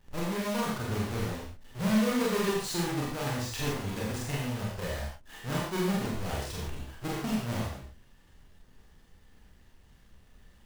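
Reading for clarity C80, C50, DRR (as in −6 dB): 3.5 dB, 0.5 dB, −5.5 dB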